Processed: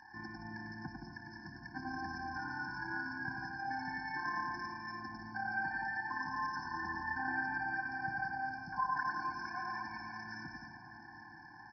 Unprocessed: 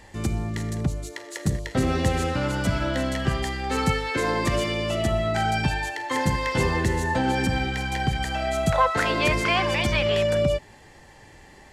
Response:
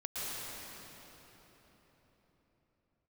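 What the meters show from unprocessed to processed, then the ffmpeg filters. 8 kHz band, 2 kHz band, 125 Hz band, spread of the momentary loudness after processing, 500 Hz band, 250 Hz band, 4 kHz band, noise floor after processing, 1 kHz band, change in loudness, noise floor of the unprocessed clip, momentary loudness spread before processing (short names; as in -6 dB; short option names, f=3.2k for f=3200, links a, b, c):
under -25 dB, -9.0 dB, -26.5 dB, 13 LU, -33.0 dB, -19.5 dB, -24.5 dB, -54 dBFS, -11.0 dB, -15.5 dB, -50 dBFS, 7 LU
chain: -filter_complex "[0:a]tremolo=f=35:d=0.621,aderivative,acompressor=threshold=-51dB:ratio=3,asuperstop=centerf=3200:order=12:qfactor=0.91,aecho=1:1:100|170|219|253.3|277.3:0.631|0.398|0.251|0.158|0.1,asplit=2[a][b];[1:a]atrim=start_sample=2205,lowpass=1.9k,adelay=96[c];[b][c]afir=irnorm=-1:irlink=0,volume=-10.5dB[d];[a][d]amix=inputs=2:normalize=0,aresample=11025,aresample=44100,afftfilt=real='re*eq(mod(floor(b*sr/1024/360),2),0)':imag='im*eq(mod(floor(b*sr/1024/360),2),0)':win_size=1024:overlap=0.75,volume=17dB"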